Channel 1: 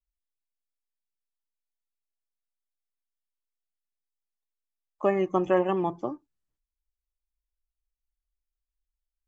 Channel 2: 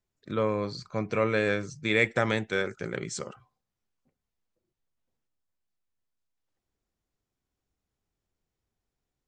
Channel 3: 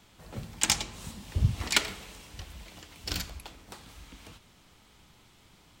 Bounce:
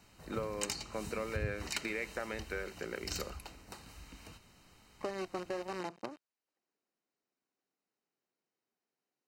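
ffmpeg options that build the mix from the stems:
-filter_complex "[0:a]acrusher=bits=5:dc=4:mix=0:aa=0.000001,volume=-5dB[a];[1:a]highpass=230,volume=-2dB[b];[2:a]acompressor=threshold=-36dB:ratio=2.5,volume=-3dB[c];[a][b]amix=inputs=2:normalize=0,highpass=160,lowpass=6k,acompressor=threshold=-36dB:ratio=5,volume=0dB[d];[c][d]amix=inputs=2:normalize=0,asuperstop=centerf=3400:order=12:qfactor=7.5"

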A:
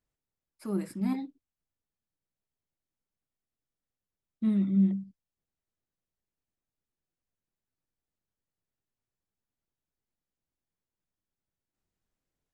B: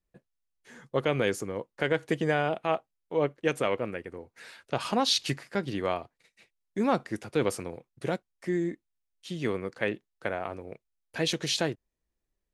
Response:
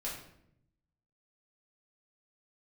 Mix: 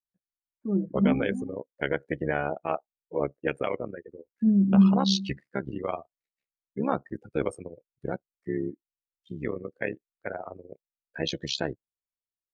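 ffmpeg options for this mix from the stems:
-filter_complex "[0:a]lowpass=1.3k,lowshelf=f=290:g=6.5,volume=1dB,asplit=2[a][b];[b]volume=-9.5dB[c];[1:a]tremolo=f=69:d=0.889,volume=2dB[d];[c]aecho=0:1:289:1[e];[a][d][e]amix=inputs=3:normalize=0,afftdn=nr=31:nf=-35,equalizer=f=1.6k:t=o:w=0.77:g=2"

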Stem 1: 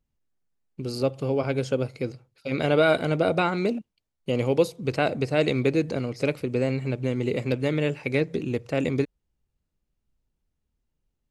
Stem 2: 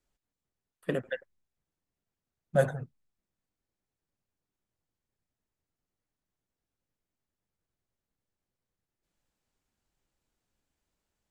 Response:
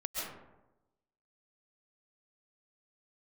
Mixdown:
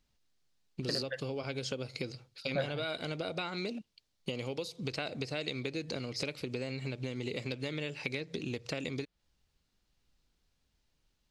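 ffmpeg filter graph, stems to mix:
-filter_complex "[0:a]acompressor=threshold=-31dB:ratio=6,volume=0dB[a];[1:a]lowpass=2.2k,volume=-1.5dB[b];[a][b]amix=inputs=2:normalize=0,equalizer=f=4.4k:w=0.72:g=14,acompressor=threshold=-36dB:ratio=2"

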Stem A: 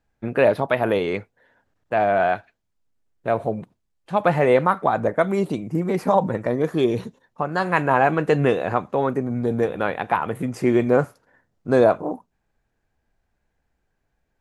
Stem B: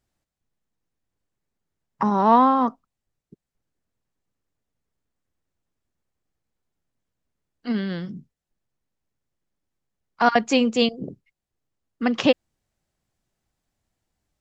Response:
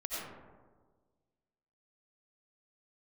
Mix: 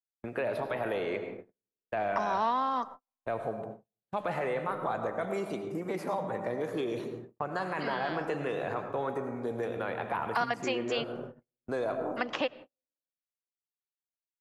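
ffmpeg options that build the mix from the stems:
-filter_complex "[0:a]alimiter=limit=-12.5dB:level=0:latency=1:release=17,volume=-9dB,asplit=2[a][b];[b]volume=-6.5dB[c];[1:a]highpass=f=1.1k:p=1,adelay=150,volume=1.5dB,asplit=2[d][e];[e]volume=-23.5dB[f];[2:a]atrim=start_sample=2205[g];[c][f]amix=inputs=2:normalize=0[h];[h][g]afir=irnorm=-1:irlink=0[i];[a][d][i]amix=inputs=3:normalize=0,agate=range=-48dB:threshold=-38dB:ratio=16:detection=peak,acrossover=split=350|1200|2400[j][k][l][m];[j]acompressor=threshold=-43dB:ratio=4[n];[k]acompressor=threshold=-31dB:ratio=4[o];[l]acompressor=threshold=-37dB:ratio=4[p];[m]acompressor=threshold=-48dB:ratio=4[q];[n][o][p][q]amix=inputs=4:normalize=0"

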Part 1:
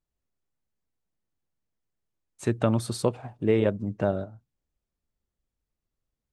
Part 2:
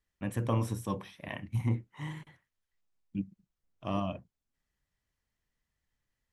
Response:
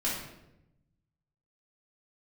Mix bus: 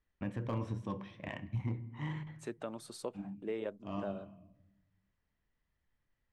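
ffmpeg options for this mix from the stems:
-filter_complex "[0:a]highpass=290,agate=range=-6dB:threshold=-48dB:ratio=16:detection=peak,volume=-12dB,asplit=2[a][b];[1:a]adynamicsmooth=sensitivity=5.5:basefreq=3.5k,lowpass=9.8k,volume=1.5dB,asplit=2[c][d];[d]volume=-21.5dB[e];[b]apad=whole_len=278748[f];[c][f]sidechaincompress=threshold=-60dB:ratio=4:attack=16:release=212[g];[2:a]atrim=start_sample=2205[h];[e][h]afir=irnorm=-1:irlink=0[i];[a][g][i]amix=inputs=3:normalize=0,volume=19dB,asoftclip=hard,volume=-19dB,alimiter=level_in=3.5dB:limit=-24dB:level=0:latency=1:release=473,volume=-3.5dB"

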